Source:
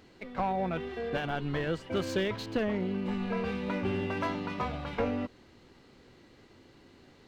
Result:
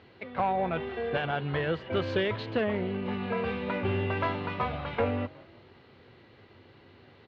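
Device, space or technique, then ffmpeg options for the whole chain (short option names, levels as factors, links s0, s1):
frequency-shifting delay pedal into a guitar cabinet: -filter_complex "[0:a]asplit=4[s0][s1][s2][s3];[s1]adelay=182,afreqshift=44,volume=0.0944[s4];[s2]adelay=364,afreqshift=88,volume=0.0359[s5];[s3]adelay=546,afreqshift=132,volume=0.0136[s6];[s0][s4][s5][s6]amix=inputs=4:normalize=0,highpass=81,equalizer=f=97:t=q:w=4:g=6,equalizer=f=190:t=q:w=4:g=-5,equalizer=f=290:t=q:w=4:g=-7,lowpass=f=3800:w=0.5412,lowpass=f=3800:w=1.3066,volume=1.5"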